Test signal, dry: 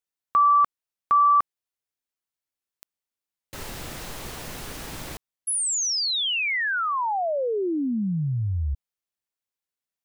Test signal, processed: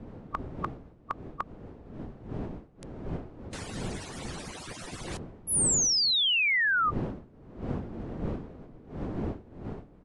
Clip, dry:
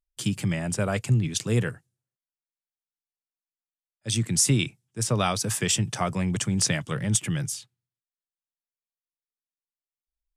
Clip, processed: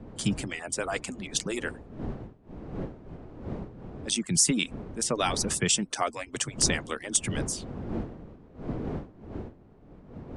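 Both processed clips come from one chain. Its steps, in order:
harmonic-percussive split with one part muted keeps percussive
wind on the microphone 300 Hz −39 dBFS
downsampling to 22,050 Hz

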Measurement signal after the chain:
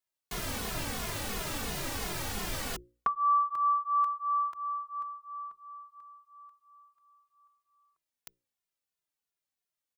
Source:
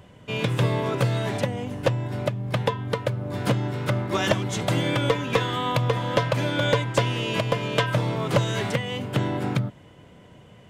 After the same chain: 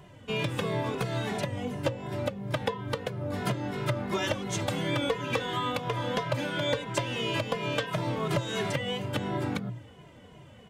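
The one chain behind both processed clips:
mains-hum notches 60/120/180/240/300/360/420/480/540 Hz
downward compressor 5 to 1, threshold −25 dBFS
barber-pole flanger 2.4 ms −2.9 Hz
level +2 dB

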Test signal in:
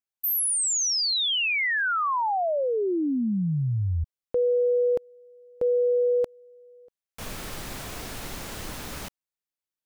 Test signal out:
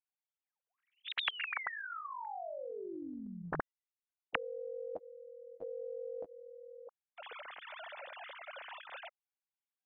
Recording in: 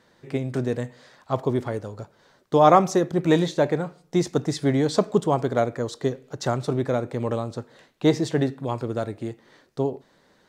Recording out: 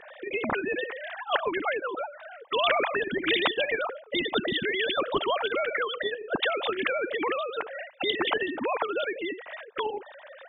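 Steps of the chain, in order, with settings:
three sine waves on the formant tracks
every bin compressed towards the loudest bin 4 to 1
level −5.5 dB

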